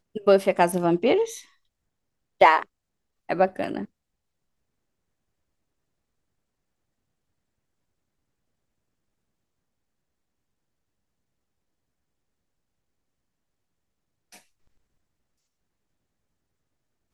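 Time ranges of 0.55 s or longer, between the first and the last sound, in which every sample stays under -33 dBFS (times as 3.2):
1.38–2.41
2.63–3.29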